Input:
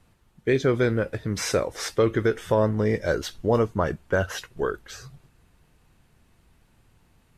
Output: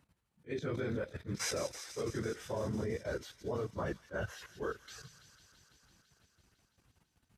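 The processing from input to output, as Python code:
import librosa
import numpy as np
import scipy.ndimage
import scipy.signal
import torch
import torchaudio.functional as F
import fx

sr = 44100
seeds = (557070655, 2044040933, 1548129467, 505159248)

y = fx.phase_scramble(x, sr, seeds[0], window_ms=50)
y = fx.level_steps(y, sr, step_db=15)
y = scipy.signal.sosfilt(scipy.signal.butter(2, 53.0, 'highpass', fs=sr, output='sos'), y)
y = fx.echo_wet_highpass(y, sr, ms=167, feedback_pct=80, hz=2800.0, wet_db=-9.5)
y = fx.attack_slew(y, sr, db_per_s=360.0)
y = F.gain(torch.from_numpy(y), -5.5).numpy()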